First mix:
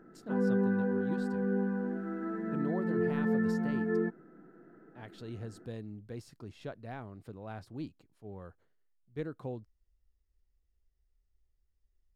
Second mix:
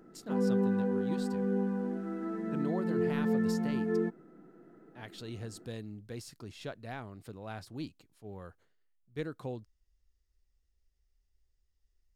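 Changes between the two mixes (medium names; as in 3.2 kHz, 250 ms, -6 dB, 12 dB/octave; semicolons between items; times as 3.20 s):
background: add peaking EQ 1.6 kHz -11.5 dB 0.45 oct; master: add treble shelf 2.2 kHz +10.5 dB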